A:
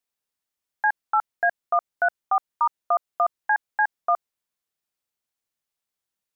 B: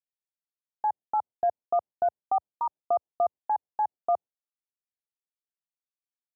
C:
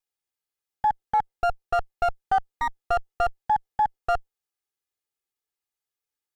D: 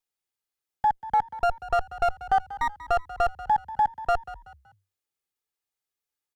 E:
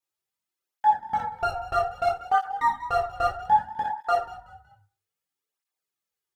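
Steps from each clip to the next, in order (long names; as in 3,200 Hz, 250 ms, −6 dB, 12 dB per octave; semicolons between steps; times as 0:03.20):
high-pass filter 86 Hz 24 dB per octave; noise gate with hold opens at −31 dBFS; Butterworth low-pass 890 Hz 36 dB per octave
lower of the sound and its delayed copy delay 2.4 ms; dynamic equaliser 590 Hz, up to +4 dB, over −41 dBFS, Q 1.4; in parallel at +1 dB: brickwall limiter −27.5 dBFS, peak gain reduction 12 dB
echo with shifted repeats 188 ms, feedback 34%, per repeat +32 Hz, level −16 dB
convolution reverb RT60 0.35 s, pre-delay 8 ms, DRR −2.5 dB; through-zero flanger with one copy inverted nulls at 0.62 Hz, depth 4.9 ms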